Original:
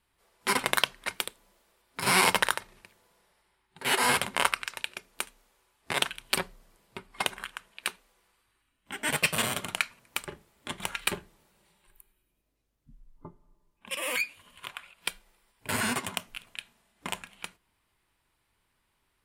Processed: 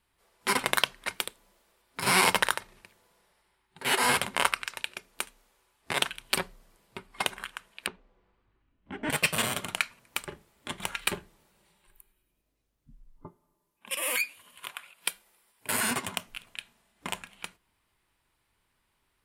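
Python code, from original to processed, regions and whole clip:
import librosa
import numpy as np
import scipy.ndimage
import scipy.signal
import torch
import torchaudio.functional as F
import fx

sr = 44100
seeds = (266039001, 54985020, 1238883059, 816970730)

y = fx.chain(x, sr, fx.lowpass(hz=3400.0, slope=12),
    fx.tilt_shelf(db=8.5, hz=790.0), at=(7.86, 9.1))
y = fx.chain(y, sr, fx.highpass(hz=250.0, slope=6),
    fx.peak_eq(hz=12000.0, db=8.5, octaves=0.81), at=(13.27, 15.91))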